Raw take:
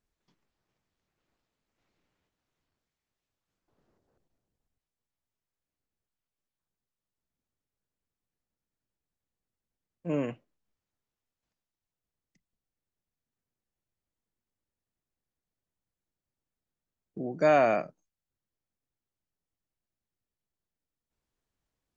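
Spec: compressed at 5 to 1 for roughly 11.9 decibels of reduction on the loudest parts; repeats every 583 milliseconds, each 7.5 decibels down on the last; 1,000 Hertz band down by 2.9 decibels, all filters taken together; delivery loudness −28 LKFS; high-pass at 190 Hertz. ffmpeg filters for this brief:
ffmpeg -i in.wav -af "highpass=190,equalizer=frequency=1000:width_type=o:gain=-5,acompressor=threshold=-33dB:ratio=5,aecho=1:1:583|1166|1749|2332|2915:0.422|0.177|0.0744|0.0312|0.0131,volume=14dB" out.wav

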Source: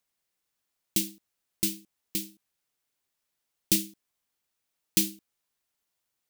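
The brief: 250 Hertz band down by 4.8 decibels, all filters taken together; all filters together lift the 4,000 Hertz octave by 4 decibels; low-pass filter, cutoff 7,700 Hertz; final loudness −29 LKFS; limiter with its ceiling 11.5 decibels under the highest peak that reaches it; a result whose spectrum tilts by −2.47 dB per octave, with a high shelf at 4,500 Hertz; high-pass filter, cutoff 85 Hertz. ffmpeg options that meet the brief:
ffmpeg -i in.wav -af "highpass=85,lowpass=7700,equalizer=frequency=250:width_type=o:gain=-7,equalizer=frequency=4000:width_type=o:gain=7.5,highshelf=frequency=4500:gain=-4,volume=9.5dB,alimiter=limit=-12.5dB:level=0:latency=1" out.wav

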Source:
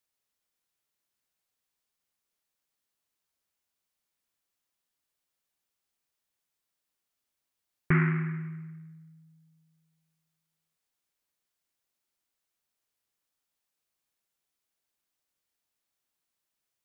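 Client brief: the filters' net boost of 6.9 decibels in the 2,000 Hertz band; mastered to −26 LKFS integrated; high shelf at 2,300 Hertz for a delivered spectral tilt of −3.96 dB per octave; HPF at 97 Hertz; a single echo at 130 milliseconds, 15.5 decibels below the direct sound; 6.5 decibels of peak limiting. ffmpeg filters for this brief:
ffmpeg -i in.wav -af "highpass=97,equalizer=frequency=2000:width_type=o:gain=4.5,highshelf=frequency=2300:gain=8,alimiter=limit=-15dB:level=0:latency=1,aecho=1:1:130:0.168,volume=4.5dB" out.wav

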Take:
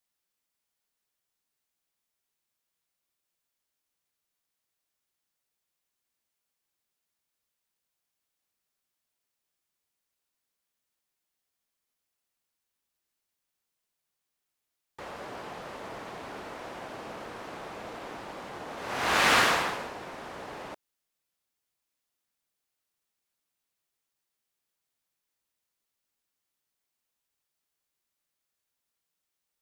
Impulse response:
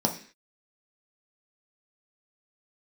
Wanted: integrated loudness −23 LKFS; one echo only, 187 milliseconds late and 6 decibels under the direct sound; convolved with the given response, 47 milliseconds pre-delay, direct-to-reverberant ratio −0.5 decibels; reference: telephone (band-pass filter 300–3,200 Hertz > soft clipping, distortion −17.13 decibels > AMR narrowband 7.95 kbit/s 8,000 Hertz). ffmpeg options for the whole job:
-filter_complex "[0:a]aecho=1:1:187:0.501,asplit=2[link_01][link_02];[1:a]atrim=start_sample=2205,adelay=47[link_03];[link_02][link_03]afir=irnorm=-1:irlink=0,volume=-9.5dB[link_04];[link_01][link_04]amix=inputs=2:normalize=0,highpass=300,lowpass=3200,asoftclip=threshold=-13.5dB,volume=8dB" -ar 8000 -c:a libopencore_amrnb -b:a 7950

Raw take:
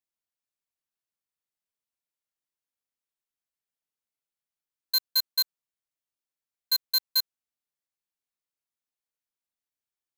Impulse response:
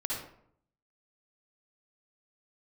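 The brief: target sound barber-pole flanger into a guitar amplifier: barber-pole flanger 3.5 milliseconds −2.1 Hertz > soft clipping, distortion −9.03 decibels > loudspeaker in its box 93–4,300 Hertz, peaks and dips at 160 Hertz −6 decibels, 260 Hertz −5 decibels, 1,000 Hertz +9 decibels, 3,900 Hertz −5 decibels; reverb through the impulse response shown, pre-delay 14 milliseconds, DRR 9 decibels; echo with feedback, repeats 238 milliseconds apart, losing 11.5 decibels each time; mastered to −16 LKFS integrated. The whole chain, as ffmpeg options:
-filter_complex "[0:a]aecho=1:1:238|476|714:0.266|0.0718|0.0194,asplit=2[link_01][link_02];[1:a]atrim=start_sample=2205,adelay=14[link_03];[link_02][link_03]afir=irnorm=-1:irlink=0,volume=-13dB[link_04];[link_01][link_04]amix=inputs=2:normalize=0,asplit=2[link_05][link_06];[link_06]adelay=3.5,afreqshift=-2.1[link_07];[link_05][link_07]amix=inputs=2:normalize=1,asoftclip=threshold=-27dB,highpass=93,equalizer=frequency=160:width_type=q:width=4:gain=-6,equalizer=frequency=260:width_type=q:width=4:gain=-5,equalizer=frequency=1000:width_type=q:width=4:gain=9,equalizer=frequency=3900:width_type=q:width=4:gain=-5,lowpass=frequency=4300:width=0.5412,lowpass=frequency=4300:width=1.3066,volume=24.5dB"

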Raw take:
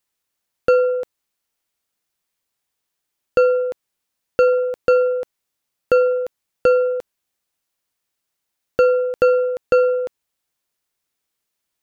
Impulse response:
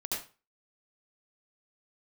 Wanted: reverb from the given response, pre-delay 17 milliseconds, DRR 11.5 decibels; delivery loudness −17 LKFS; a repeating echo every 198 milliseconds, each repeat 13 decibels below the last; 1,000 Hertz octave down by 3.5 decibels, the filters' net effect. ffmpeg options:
-filter_complex "[0:a]equalizer=frequency=1000:width_type=o:gain=-6.5,aecho=1:1:198|396|594:0.224|0.0493|0.0108,asplit=2[link_01][link_02];[1:a]atrim=start_sample=2205,adelay=17[link_03];[link_02][link_03]afir=irnorm=-1:irlink=0,volume=-14.5dB[link_04];[link_01][link_04]amix=inputs=2:normalize=0,volume=5dB"

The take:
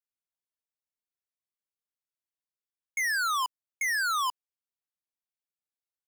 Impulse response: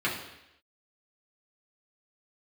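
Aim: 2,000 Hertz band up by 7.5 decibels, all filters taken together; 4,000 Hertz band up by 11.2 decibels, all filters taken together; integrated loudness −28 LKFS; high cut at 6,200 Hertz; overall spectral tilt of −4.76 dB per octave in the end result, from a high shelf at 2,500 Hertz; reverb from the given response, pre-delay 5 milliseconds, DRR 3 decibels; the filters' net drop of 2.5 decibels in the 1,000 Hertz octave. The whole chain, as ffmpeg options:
-filter_complex "[0:a]lowpass=6200,equalizer=frequency=1000:width_type=o:gain=-9,equalizer=frequency=2000:width_type=o:gain=8,highshelf=frequency=2500:gain=4.5,equalizer=frequency=4000:width_type=o:gain=9,asplit=2[link_01][link_02];[1:a]atrim=start_sample=2205,adelay=5[link_03];[link_02][link_03]afir=irnorm=-1:irlink=0,volume=-14dB[link_04];[link_01][link_04]amix=inputs=2:normalize=0,volume=-8dB"

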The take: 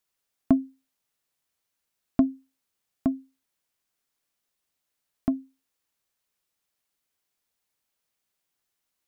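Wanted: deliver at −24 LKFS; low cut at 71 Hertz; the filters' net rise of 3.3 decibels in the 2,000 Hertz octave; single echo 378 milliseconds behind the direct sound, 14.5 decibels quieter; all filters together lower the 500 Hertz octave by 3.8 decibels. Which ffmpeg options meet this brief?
ffmpeg -i in.wav -af "highpass=71,equalizer=frequency=500:width_type=o:gain=-7,equalizer=frequency=2000:width_type=o:gain=5,aecho=1:1:378:0.188,volume=7.5dB" out.wav

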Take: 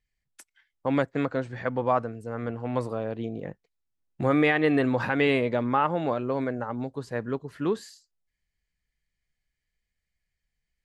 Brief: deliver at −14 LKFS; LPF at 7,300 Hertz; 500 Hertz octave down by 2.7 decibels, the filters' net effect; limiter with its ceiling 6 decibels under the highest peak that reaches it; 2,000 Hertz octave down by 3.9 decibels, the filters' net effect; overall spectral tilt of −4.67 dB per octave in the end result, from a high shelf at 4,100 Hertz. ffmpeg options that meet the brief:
ffmpeg -i in.wav -af "lowpass=7300,equalizer=frequency=500:width_type=o:gain=-3,equalizer=frequency=2000:width_type=o:gain=-3.5,highshelf=frequency=4100:gain=-5,volume=17dB,alimiter=limit=-1dB:level=0:latency=1" out.wav

